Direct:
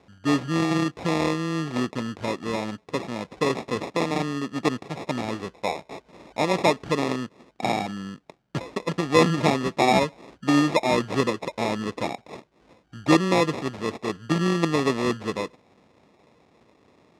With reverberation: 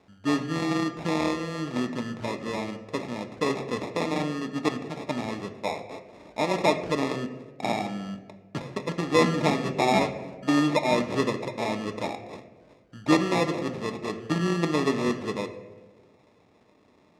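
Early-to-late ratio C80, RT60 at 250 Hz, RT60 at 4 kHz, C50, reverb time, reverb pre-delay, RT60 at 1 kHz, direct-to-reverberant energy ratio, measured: 12.5 dB, 1.5 s, 0.70 s, 10.5 dB, 1.3 s, 3 ms, 1.1 s, 6.0 dB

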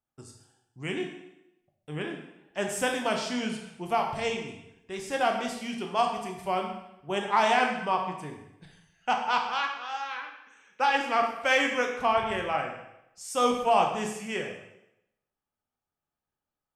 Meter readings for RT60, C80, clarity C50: 0.85 s, 7.5 dB, 5.5 dB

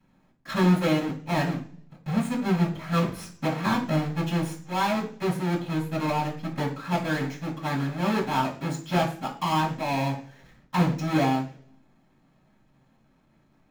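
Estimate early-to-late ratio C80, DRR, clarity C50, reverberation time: 13.5 dB, −13.5 dB, 9.0 dB, 0.45 s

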